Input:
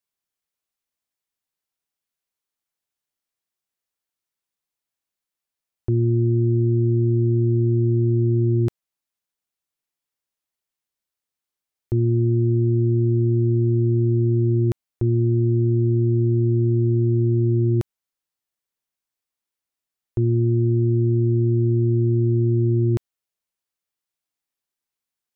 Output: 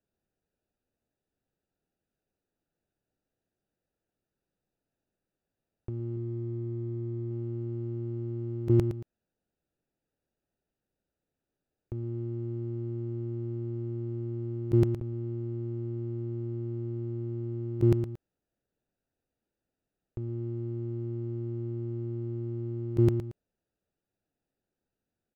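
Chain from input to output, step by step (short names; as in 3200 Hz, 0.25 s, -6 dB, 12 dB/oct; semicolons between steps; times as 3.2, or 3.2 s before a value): Wiener smoothing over 41 samples; 6.16–7.31 notch comb 200 Hz; on a send: feedback echo 0.114 s, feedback 32%, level -14 dB; on the sum: negative-ratio compressor -34 dBFS, ratio -1; gain +1.5 dB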